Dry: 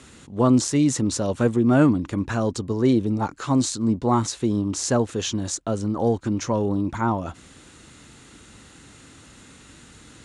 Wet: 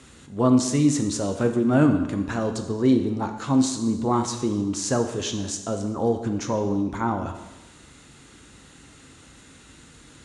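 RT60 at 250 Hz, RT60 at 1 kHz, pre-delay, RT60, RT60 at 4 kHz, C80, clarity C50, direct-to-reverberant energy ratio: 1.1 s, 1.1 s, 5 ms, 1.1 s, 1.0 s, 10.5 dB, 8.0 dB, 5.5 dB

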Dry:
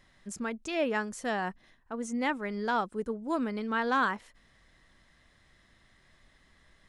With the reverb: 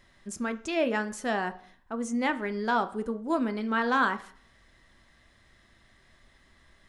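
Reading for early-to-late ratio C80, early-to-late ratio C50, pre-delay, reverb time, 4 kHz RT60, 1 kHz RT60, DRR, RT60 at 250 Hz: 20.0 dB, 16.5 dB, 3 ms, 0.55 s, 0.65 s, 0.55 s, 9.0 dB, 0.55 s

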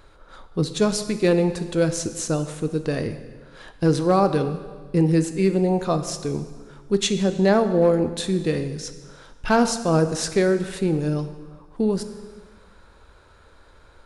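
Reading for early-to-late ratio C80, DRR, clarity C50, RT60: 12.0 dB, 9.0 dB, 11.0 dB, 1.5 s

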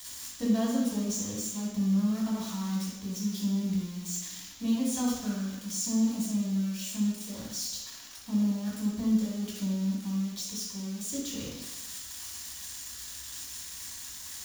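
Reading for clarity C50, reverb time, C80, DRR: 0.0 dB, 1.0 s, 3.0 dB, -6.0 dB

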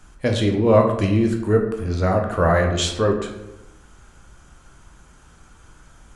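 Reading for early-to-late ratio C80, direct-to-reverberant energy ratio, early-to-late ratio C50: 9.0 dB, 2.0 dB, 6.5 dB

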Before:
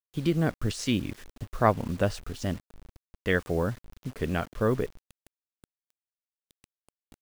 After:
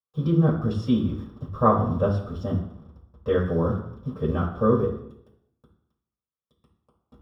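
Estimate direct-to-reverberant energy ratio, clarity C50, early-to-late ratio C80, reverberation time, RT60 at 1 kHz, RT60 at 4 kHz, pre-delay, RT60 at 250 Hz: -5.5 dB, 6.5 dB, 10.5 dB, 0.70 s, 0.70 s, 0.60 s, 3 ms, 0.80 s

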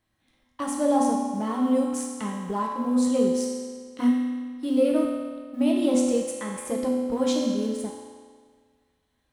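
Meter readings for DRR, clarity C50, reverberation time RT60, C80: -2.5 dB, 1.0 dB, 1.7 s, 3.0 dB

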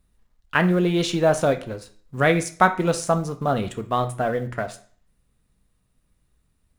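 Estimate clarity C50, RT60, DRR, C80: 13.5 dB, 0.50 s, 6.5 dB, 18.0 dB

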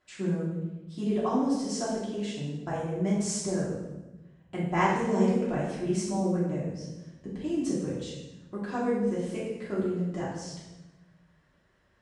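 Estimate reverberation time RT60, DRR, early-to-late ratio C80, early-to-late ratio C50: 1.0 s, -8.5 dB, 4.0 dB, 1.0 dB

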